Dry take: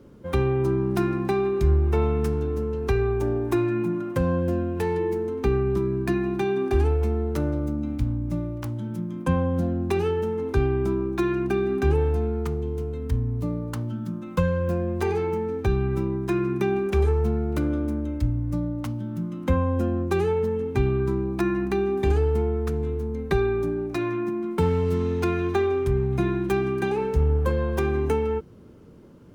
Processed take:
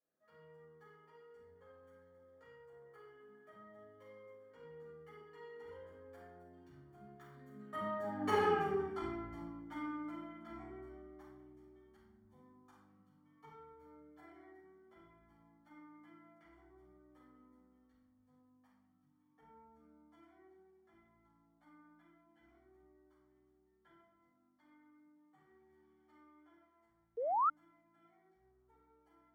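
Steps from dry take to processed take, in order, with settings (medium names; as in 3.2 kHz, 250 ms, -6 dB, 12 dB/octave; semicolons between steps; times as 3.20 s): Doppler pass-by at 8.40 s, 57 m/s, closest 11 m; Savitzky-Golay filter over 41 samples; simulated room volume 280 m³, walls mixed, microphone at 5.9 m; painted sound rise, 27.17–27.50 s, 440–1400 Hz -18 dBFS; differentiator; trim +3.5 dB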